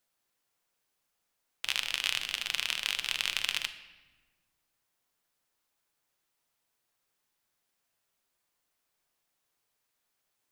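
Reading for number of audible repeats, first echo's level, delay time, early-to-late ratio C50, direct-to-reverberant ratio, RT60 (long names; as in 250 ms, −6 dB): no echo audible, no echo audible, no echo audible, 12.0 dB, 8.0 dB, 1.3 s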